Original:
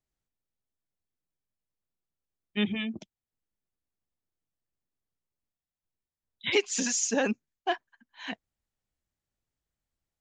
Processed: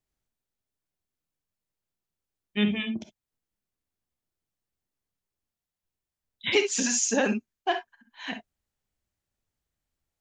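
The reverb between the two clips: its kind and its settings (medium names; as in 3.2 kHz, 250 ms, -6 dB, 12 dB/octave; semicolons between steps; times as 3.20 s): gated-style reverb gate 80 ms rising, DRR 7.5 dB; trim +2 dB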